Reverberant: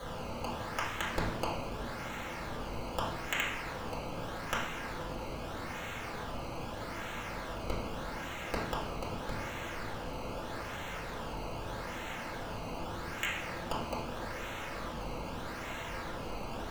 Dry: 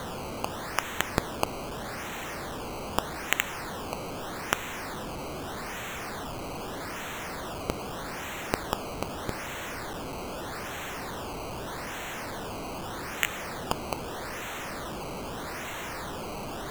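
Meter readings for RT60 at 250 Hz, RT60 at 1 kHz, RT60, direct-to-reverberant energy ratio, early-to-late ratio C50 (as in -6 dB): 1.3 s, 0.70 s, 0.75 s, -7.0 dB, 2.5 dB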